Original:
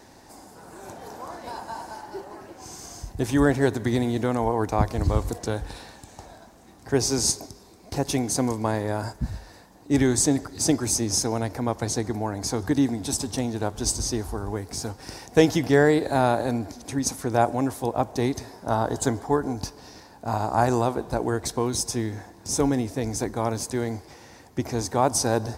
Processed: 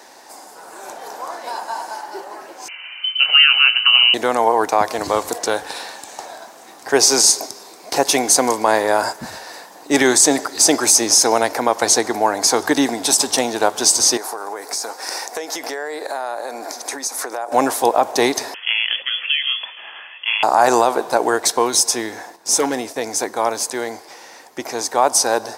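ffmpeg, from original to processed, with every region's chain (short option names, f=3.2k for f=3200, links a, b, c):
-filter_complex "[0:a]asettb=1/sr,asplit=3[a][b][c];[a]atrim=end=2.684[d];[b]atrim=start=2.68:end=4.14,asetpts=PTS-STARTPTS,afade=t=in:d=0.004:c=qsin,afade=t=out:st=1.456:d=0.004:c=qsin,asubboost=boost=6.5:cutoff=81,asplit=2[e][f];[f]adelay=25,volume=-12dB[g];[e][g]amix=inputs=2:normalize=0,atrim=end_sample=64386,lowpass=f=2.6k:t=q:w=0.5098,lowpass=f=2.6k:t=q:w=0.6013,lowpass=f=2.6k:t=q:w=0.9,lowpass=f=2.6k:t=q:w=2.563,afreqshift=-3100[h];[c]atrim=start=4.136[i];[d][h]acrossfade=d=0.004:c1=hsin:c2=qsin[j];[j][i]acrossfade=d=0.004:c1=qsin:c2=hsin,asettb=1/sr,asplit=3[k][l][m];[k]atrim=end=14.174[n];[l]atrim=start=14.17:end=17.52,asetpts=PTS-STARTPTS,afade=t=in:d=0.004:c=qsin,afade=t=out:st=3.346:d=0.004:c=qsin,highpass=380,equalizer=f=3k:w=3.1:g=-8,acompressor=threshold=-35dB:ratio=10:attack=3.2:release=140:knee=1:detection=peak[o];[m]atrim=start=17.516[p];[n][o]acrossfade=d=0.004:c1=hsin:c2=qsin[q];[q][p]acrossfade=d=0.004:c1=qsin:c2=hsin,asettb=1/sr,asplit=3[r][s][t];[r]atrim=end=18.544[u];[s]atrim=start=18.54:end=20.43,asetpts=PTS-STARTPTS,afade=t=in:d=0.004:c=qsin,afade=t=out:st=1.886:d=0.004:c=qsin,tiltshelf=f=1.5k:g=-9.5,acompressor=threshold=-28dB:ratio=16:attack=3.2:release=140:knee=1:detection=peak,lowpass=f=3k:t=q:w=0.5098,lowpass=f=3k:t=q:w=0.6013,lowpass=f=3k:t=q:w=0.9,lowpass=f=3k:t=q:w=2.563,afreqshift=-3500[v];[t]atrim=start=20.426[w];[u][v]acrossfade=d=0.004:c1=hsin:c2=qsin[x];[x][w]acrossfade=d=0.004:c1=qsin:c2=hsin,asettb=1/sr,asplit=3[y][z][aa];[y]atrim=end=22.364[ab];[z]atrim=start=22.36:end=22.96,asetpts=PTS-STARTPTS,afade=t=in:d=0.004:c=qsin,afade=t=out:st=0.596:d=0.004:c=qsin,agate=range=-8dB:threshold=-39dB:ratio=16:release=100:detection=peak,asoftclip=type=hard:threshold=-15.5dB[ac];[aa]atrim=start=22.956[ad];[ab][ac]acrossfade=d=0.004:c1=hsin:c2=qsin[ae];[ae][ad]acrossfade=d=0.004:c1=qsin:c2=hsin,highpass=550,dynaudnorm=f=270:g=31:m=7.5dB,alimiter=level_in=10.5dB:limit=-1dB:release=50:level=0:latency=1,volume=-1dB"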